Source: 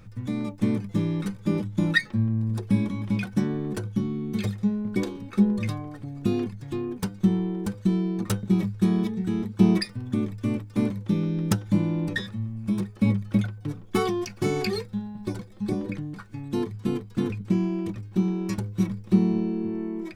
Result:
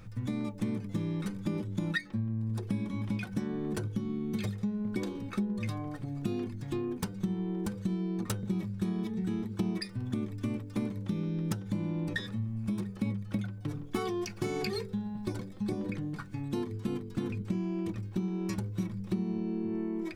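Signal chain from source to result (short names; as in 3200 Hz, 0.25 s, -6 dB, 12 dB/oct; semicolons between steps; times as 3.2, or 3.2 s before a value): de-hum 48.47 Hz, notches 12; compressor 5:1, threshold -30 dBFS, peak gain reduction 14.5 dB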